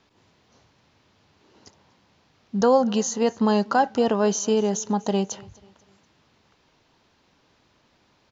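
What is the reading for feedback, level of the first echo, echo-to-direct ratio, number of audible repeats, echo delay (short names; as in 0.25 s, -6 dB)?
42%, -23.5 dB, -22.5 dB, 2, 0.244 s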